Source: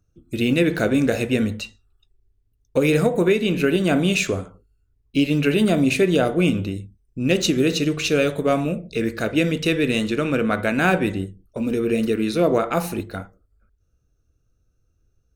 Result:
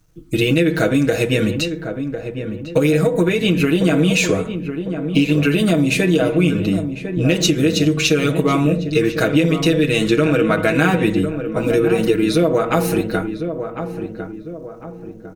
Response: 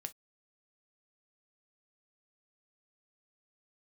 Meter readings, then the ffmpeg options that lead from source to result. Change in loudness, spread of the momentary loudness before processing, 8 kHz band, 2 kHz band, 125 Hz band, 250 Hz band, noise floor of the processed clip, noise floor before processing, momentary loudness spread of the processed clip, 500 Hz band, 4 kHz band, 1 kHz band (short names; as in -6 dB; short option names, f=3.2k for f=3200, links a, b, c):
+3.5 dB, 10 LU, +5.0 dB, +3.5 dB, +6.0 dB, +4.0 dB, -34 dBFS, -67 dBFS, 11 LU, +3.5 dB, +4.5 dB, +3.0 dB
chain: -filter_complex "[0:a]aecho=1:1:6.3:0.98,acompressor=threshold=-19dB:ratio=6,acrusher=bits=11:mix=0:aa=0.000001,asplit=2[a][b];[b]adelay=1052,lowpass=f=1.2k:p=1,volume=-8dB,asplit=2[c][d];[d]adelay=1052,lowpass=f=1.2k:p=1,volume=0.45,asplit=2[e][f];[f]adelay=1052,lowpass=f=1.2k:p=1,volume=0.45,asplit=2[g][h];[h]adelay=1052,lowpass=f=1.2k:p=1,volume=0.45,asplit=2[i][j];[j]adelay=1052,lowpass=f=1.2k:p=1,volume=0.45[k];[c][e][g][i][k]amix=inputs=5:normalize=0[l];[a][l]amix=inputs=2:normalize=0,volume=6.5dB"